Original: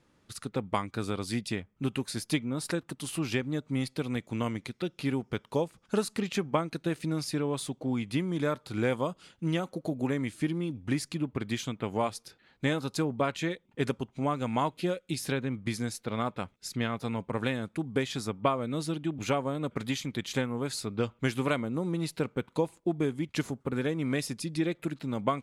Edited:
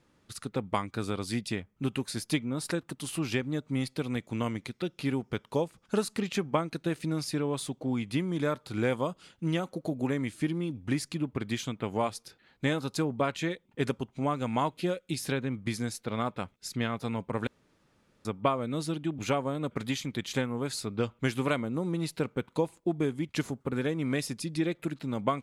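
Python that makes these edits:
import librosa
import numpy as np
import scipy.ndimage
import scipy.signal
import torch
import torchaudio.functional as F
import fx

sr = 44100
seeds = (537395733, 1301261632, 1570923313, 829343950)

y = fx.edit(x, sr, fx.room_tone_fill(start_s=17.47, length_s=0.78), tone=tone)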